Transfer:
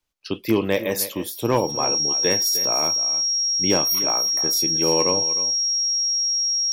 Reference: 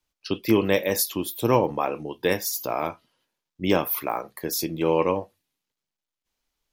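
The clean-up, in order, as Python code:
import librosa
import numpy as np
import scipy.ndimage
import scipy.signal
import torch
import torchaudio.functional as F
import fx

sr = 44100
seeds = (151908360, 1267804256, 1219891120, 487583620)

y = fx.fix_declip(x, sr, threshold_db=-9.5)
y = fx.notch(y, sr, hz=5600.0, q=30.0)
y = fx.fix_echo_inverse(y, sr, delay_ms=306, level_db=-14.0)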